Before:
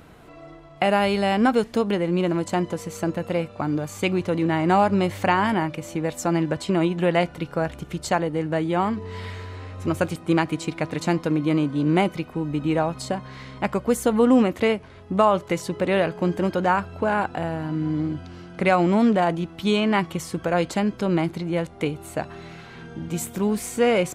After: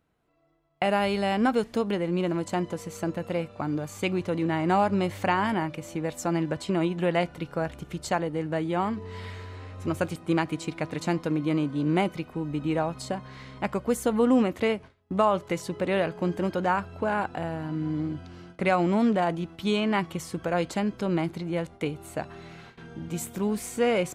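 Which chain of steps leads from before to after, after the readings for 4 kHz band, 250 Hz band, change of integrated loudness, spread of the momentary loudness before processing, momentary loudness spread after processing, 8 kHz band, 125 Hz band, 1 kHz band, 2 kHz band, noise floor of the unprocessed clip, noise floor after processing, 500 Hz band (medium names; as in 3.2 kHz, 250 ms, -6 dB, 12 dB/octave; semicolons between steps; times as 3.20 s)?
-4.5 dB, -4.5 dB, -4.5 dB, 10 LU, 10 LU, -4.5 dB, -4.5 dB, -4.5 dB, -4.5 dB, -44 dBFS, -53 dBFS, -4.5 dB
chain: gate with hold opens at -31 dBFS; trim -4.5 dB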